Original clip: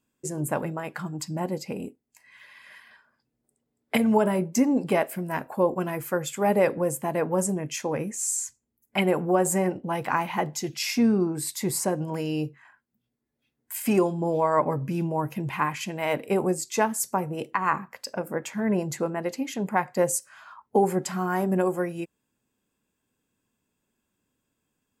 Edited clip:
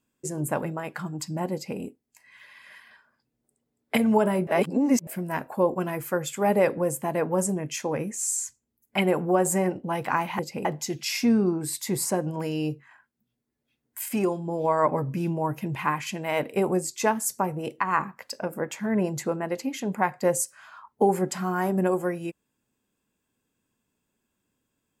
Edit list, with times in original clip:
1.53–1.79 s: copy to 10.39 s
4.47–5.07 s: reverse
13.83–14.38 s: gain -3.5 dB

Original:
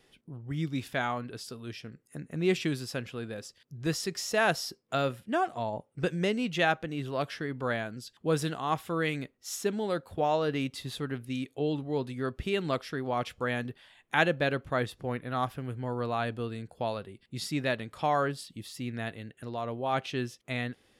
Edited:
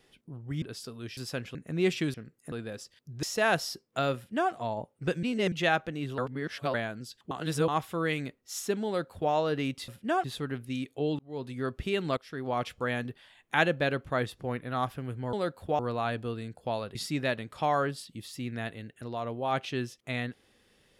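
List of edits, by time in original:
0.62–1.26 s: delete
1.81–2.19 s: swap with 2.78–3.16 s
3.87–4.19 s: delete
5.12–5.48 s: copy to 10.84 s
6.19–6.48 s: reverse
7.14–7.70 s: reverse
8.27–8.64 s: reverse
9.82–10.28 s: copy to 15.93 s
11.79–12.16 s: fade in
12.77–13.08 s: fade in, from -17.5 dB
17.09–17.36 s: delete

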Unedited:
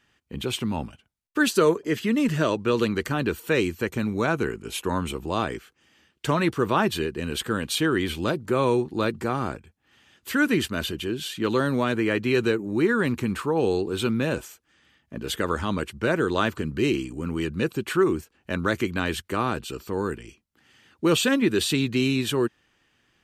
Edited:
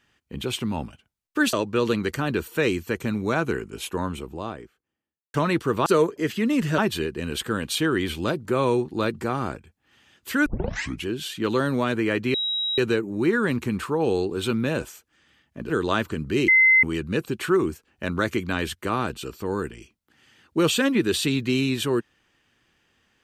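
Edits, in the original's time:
1.53–2.45 s: move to 6.78 s
4.51–6.26 s: studio fade out
10.46 s: tape start 0.60 s
12.34 s: add tone 3.84 kHz -23 dBFS 0.44 s
15.26–16.17 s: delete
16.95–17.30 s: bleep 2.06 kHz -12.5 dBFS

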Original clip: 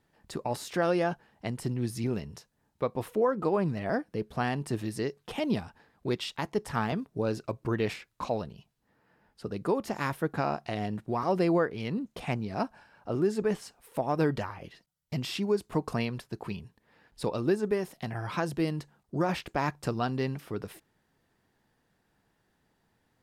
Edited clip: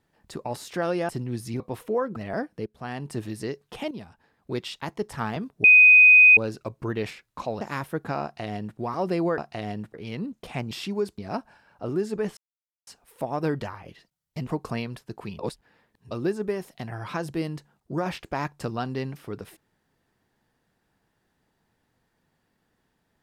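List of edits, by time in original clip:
1.09–1.59 s: delete
2.10–2.87 s: delete
3.43–3.72 s: delete
4.22–4.69 s: fade in, from -16 dB
5.47–6.13 s: fade in, from -12.5 dB
7.20 s: add tone 2.5 kHz -9.5 dBFS 0.73 s
8.44–9.90 s: delete
10.52–11.08 s: copy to 11.67 s
13.63 s: insert silence 0.50 s
15.23–15.70 s: move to 12.44 s
16.62–17.34 s: reverse

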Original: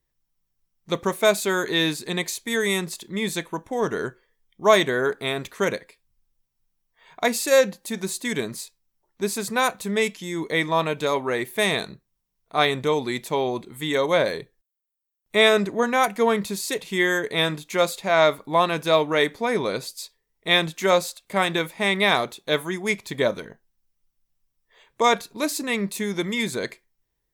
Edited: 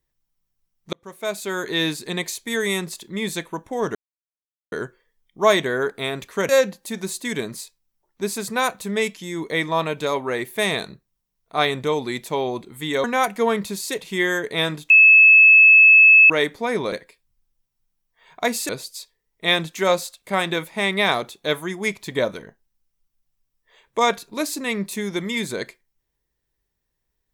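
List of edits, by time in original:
0.93–1.83 s: fade in
3.95 s: insert silence 0.77 s
5.72–7.49 s: move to 19.72 s
14.04–15.84 s: delete
17.70–19.10 s: bleep 2.6 kHz -7 dBFS

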